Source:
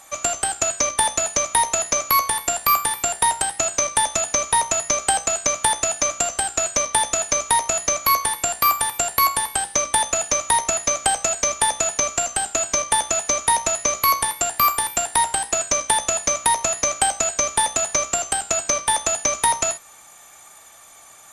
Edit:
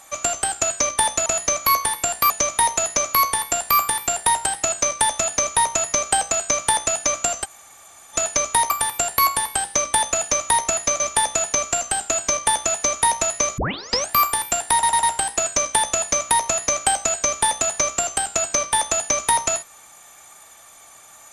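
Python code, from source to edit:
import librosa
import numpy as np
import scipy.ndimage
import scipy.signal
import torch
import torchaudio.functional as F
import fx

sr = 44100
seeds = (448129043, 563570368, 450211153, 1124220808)

y = fx.edit(x, sr, fx.room_tone_fill(start_s=6.4, length_s=0.7, crossfade_s=0.04),
    fx.move(start_s=7.66, length_s=1.04, to_s=1.26),
    fx.cut(start_s=11.0, length_s=0.45),
    fx.tape_start(start_s=14.03, length_s=0.53),
    fx.stutter(start_s=15.18, slice_s=0.1, count=4), tone=tone)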